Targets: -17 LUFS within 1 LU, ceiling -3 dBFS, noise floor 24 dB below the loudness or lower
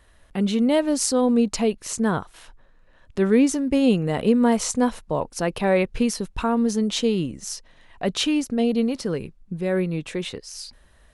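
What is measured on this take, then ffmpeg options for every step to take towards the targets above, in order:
loudness -22.5 LUFS; peak -5.0 dBFS; loudness target -17.0 LUFS
-> -af "volume=5.5dB,alimiter=limit=-3dB:level=0:latency=1"

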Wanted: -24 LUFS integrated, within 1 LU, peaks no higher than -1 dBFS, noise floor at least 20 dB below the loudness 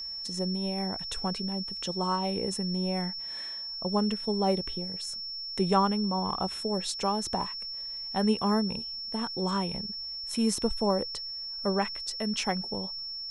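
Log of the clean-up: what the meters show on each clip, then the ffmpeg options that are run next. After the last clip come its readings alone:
steady tone 5400 Hz; tone level -35 dBFS; loudness -30.0 LUFS; peak -12.5 dBFS; loudness target -24.0 LUFS
-> -af "bandreject=f=5.4k:w=30"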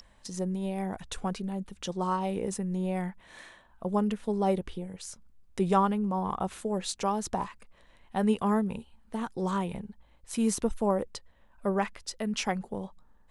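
steady tone none; loudness -31.5 LUFS; peak -13.0 dBFS; loudness target -24.0 LUFS
-> -af "volume=7.5dB"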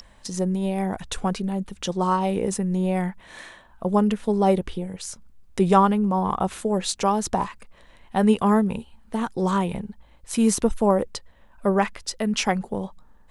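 loudness -24.0 LUFS; peak -5.5 dBFS; noise floor -52 dBFS

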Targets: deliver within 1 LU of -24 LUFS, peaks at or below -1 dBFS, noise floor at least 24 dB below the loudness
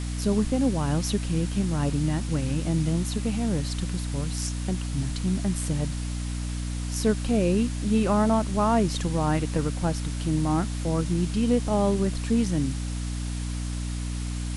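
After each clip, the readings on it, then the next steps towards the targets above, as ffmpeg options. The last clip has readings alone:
hum 60 Hz; harmonics up to 300 Hz; hum level -28 dBFS; noise floor -30 dBFS; noise floor target -51 dBFS; loudness -26.5 LUFS; peak -10.5 dBFS; loudness target -24.0 LUFS
-> -af "bandreject=f=60:t=h:w=4,bandreject=f=120:t=h:w=4,bandreject=f=180:t=h:w=4,bandreject=f=240:t=h:w=4,bandreject=f=300:t=h:w=4"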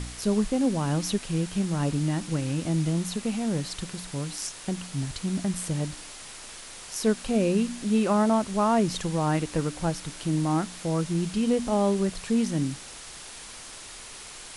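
hum none; noise floor -43 dBFS; noise floor target -51 dBFS
-> -af "afftdn=nr=8:nf=-43"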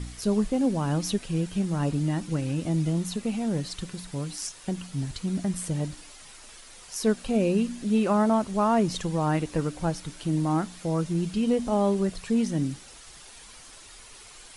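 noise floor -48 dBFS; noise floor target -52 dBFS
-> -af "afftdn=nr=6:nf=-48"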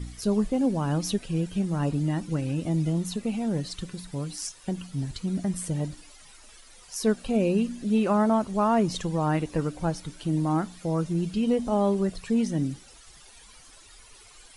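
noise floor -52 dBFS; loudness -27.5 LUFS; peak -12.0 dBFS; loudness target -24.0 LUFS
-> -af "volume=3.5dB"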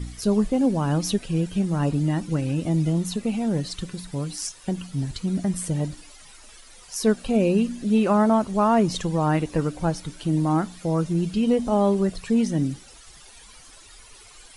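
loudness -24.0 LUFS; peak -8.5 dBFS; noise floor -48 dBFS

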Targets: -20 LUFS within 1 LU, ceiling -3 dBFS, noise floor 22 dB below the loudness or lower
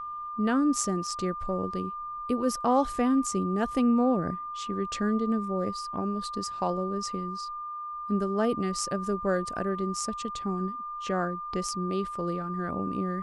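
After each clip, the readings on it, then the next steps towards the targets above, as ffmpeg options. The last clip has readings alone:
steady tone 1200 Hz; tone level -34 dBFS; loudness -29.5 LUFS; peak -11.5 dBFS; loudness target -20.0 LUFS
-> -af "bandreject=f=1.2k:w=30"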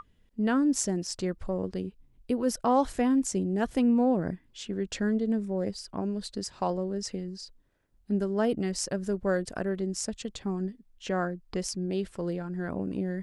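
steady tone none; loudness -30.0 LUFS; peak -12.0 dBFS; loudness target -20.0 LUFS
-> -af "volume=10dB,alimiter=limit=-3dB:level=0:latency=1"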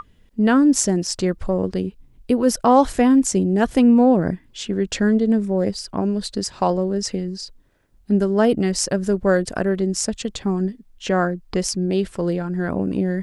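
loudness -20.0 LUFS; peak -3.0 dBFS; noise floor -54 dBFS

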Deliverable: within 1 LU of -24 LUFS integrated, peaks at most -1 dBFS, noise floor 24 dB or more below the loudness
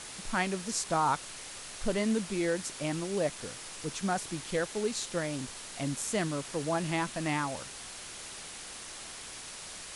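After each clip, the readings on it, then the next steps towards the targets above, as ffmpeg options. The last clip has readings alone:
noise floor -45 dBFS; noise floor target -58 dBFS; loudness -33.5 LUFS; peak -17.0 dBFS; loudness target -24.0 LUFS
-> -af "afftdn=nr=13:nf=-45"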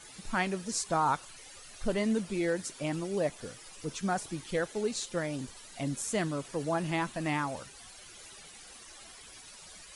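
noise floor -51 dBFS; noise floor target -57 dBFS
-> -af "afftdn=nr=6:nf=-51"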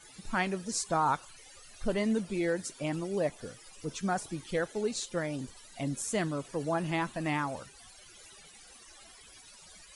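noise floor -54 dBFS; noise floor target -57 dBFS
-> -af "afftdn=nr=6:nf=-54"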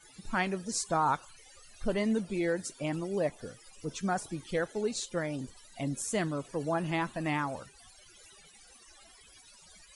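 noise floor -57 dBFS; loudness -33.0 LUFS; peak -17.0 dBFS; loudness target -24.0 LUFS
-> -af "volume=9dB"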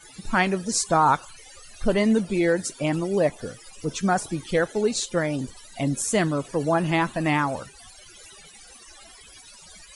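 loudness -24.0 LUFS; peak -8.0 dBFS; noise floor -48 dBFS

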